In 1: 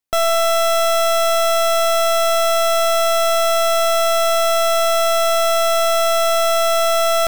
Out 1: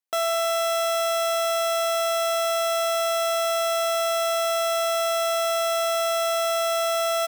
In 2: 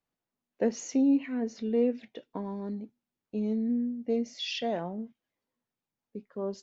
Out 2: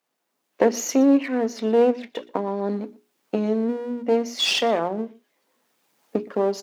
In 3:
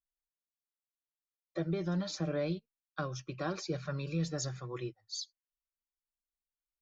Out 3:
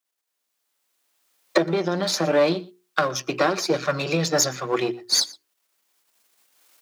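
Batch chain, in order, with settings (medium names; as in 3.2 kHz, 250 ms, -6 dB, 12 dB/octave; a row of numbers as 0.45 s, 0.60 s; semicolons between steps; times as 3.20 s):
partial rectifier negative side -7 dB; recorder AGC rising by 12 dB/s; high-pass 290 Hz 12 dB/octave; hum notches 60/120/180/240/300/360/420 Hz; delay 119 ms -22 dB; normalise loudness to -23 LUFS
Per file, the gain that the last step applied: -4.0 dB, +13.0 dB, +15.0 dB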